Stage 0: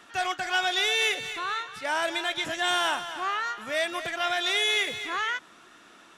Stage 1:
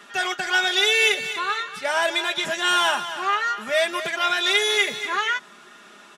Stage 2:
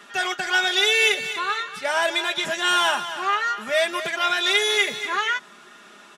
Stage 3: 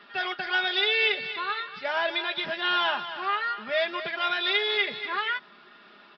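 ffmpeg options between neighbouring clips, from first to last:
-af "highpass=f=48:p=1,equalizer=f=67:t=o:w=1.2:g=-8.5,aecho=1:1:4.9:0.74,volume=4dB"
-af anull
-af "aresample=11025,aresample=44100,volume=-5dB"

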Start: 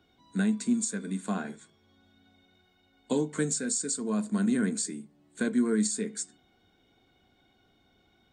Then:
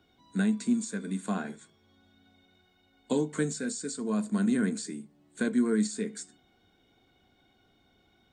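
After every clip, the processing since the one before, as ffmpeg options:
-filter_complex "[0:a]acrossover=split=4800[a][b];[b]acompressor=threshold=-39dB:ratio=4:attack=1:release=60[c];[a][c]amix=inputs=2:normalize=0"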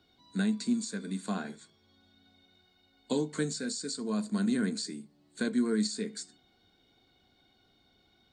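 -af "equalizer=f=4.4k:w=2.7:g=11,volume=-2.5dB"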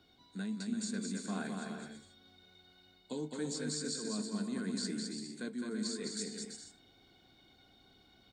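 -af "areverse,acompressor=threshold=-38dB:ratio=6,areverse,aecho=1:1:210|336|411.6|457|484.2:0.631|0.398|0.251|0.158|0.1,volume=1dB"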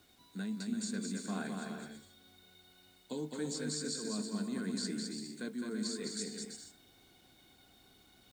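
-af "acrusher=bits=10:mix=0:aa=0.000001"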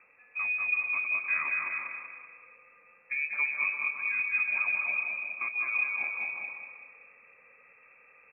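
-filter_complex "[0:a]asplit=2[a][b];[b]aecho=0:1:190|380|570|760|950|1140:0.473|0.227|0.109|0.0523|0.0251|0.0121[c];[a][c]amix=inputs=2:normalize=0,lowpass=f=2.3k:t=q:w=0.5098,lowpass=f=2.3k:t=q:w=0.6013,lowpass=f=2.3k:t=q:w=0.9,lowpass=f=2.3k:t=q:w=2.563,afreqshift=-2700,volume=7dB"

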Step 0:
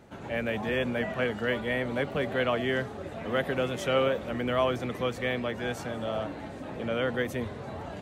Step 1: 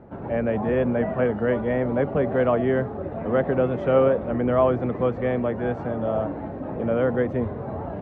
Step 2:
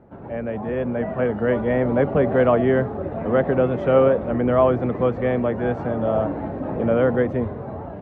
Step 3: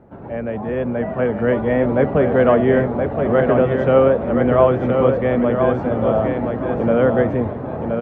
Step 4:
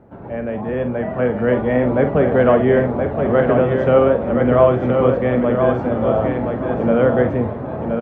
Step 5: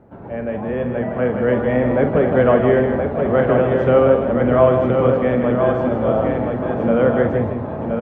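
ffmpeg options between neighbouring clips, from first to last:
-af "lowpass=1k,volume=8dB"
-af "dynaudnorm=f=380:g=7:m=11.5dB,volume=-4dB"
-af "aecho=1:1:1022|2044|3066:0.562|0.146|0.038,volume=2.5dB"
-filter_complex "[0:a]asplit=2[a][b];[b]adelay=48,volume=-9.5dB[c];[a][c]amix=inputs=2:normalize=0"
-af "aecho=1:1:158:0.447,volume=-1dB"

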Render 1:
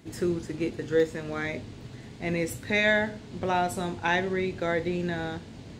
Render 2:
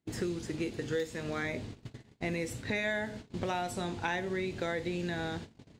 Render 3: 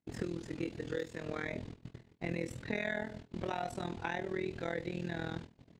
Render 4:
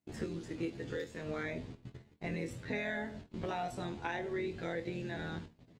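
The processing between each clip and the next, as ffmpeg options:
-filter_complex "[0:a]agate=range=-31dB:threshold=-40dB:ratio=16:detection=peak,acrossover=split=2300|7800[a][b][c];[a]acompressor=threshold=-34dB:ratio=4[d];[b]acompressor=threshold=-45dB:ratio=4[e];[c]acompressor=threshold=-57dB:ratio=4[f];[d][e][f]amix=inputs=3:normalize=0,volume=1.5dB"
-filter_complex "[0:a]tremolo=f=41:d=0.889,highshelf=f=4.6k:g=-8.5,asplit=2[a][b];[b]adelay=24,volume=-11dB[c];[a][c]amix=inputs=2:normalize=0"
-filter_complex "[0:a]asplit=2[a][b];[b]adelay=11.4,afreqshift=0.98[c];[a][c]amix=inputs=2:normalize=1,volume=2.5dB"

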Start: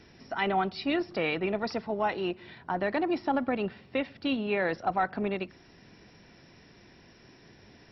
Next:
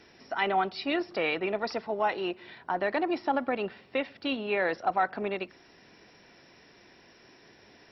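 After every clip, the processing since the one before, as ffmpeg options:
-af "bass=f=250:g=-11,treble=f=4k:g=-1,volume=1.5dB"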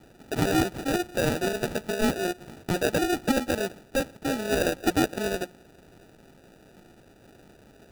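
-af "acrusher=samples=41:mix=1:aa=0.000001,volume=3.5dB"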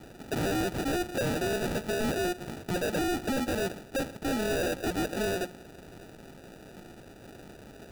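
-filter_complex "[0:a]asplit=2[a][b];[b]alimiter=limit=-24dB:level=0:latency=1,volume=-2dB[c];[a][c]amix=inputs=2:normalize=0,asoftclip=type=hard:threshold=-27dB"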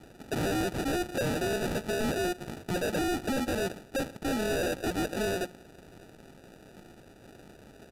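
-af "aeval=exprs='0.0473*(cos(1*acos(clip(val(0)/0.0473,-1,1)))-cos(1*PI/2))+0.00266*(cos(7*acos(clip(val(0)/0.0473,-1,1)))-cos(7*PI/2))':c=same,aresample=32000,aresample=44100"

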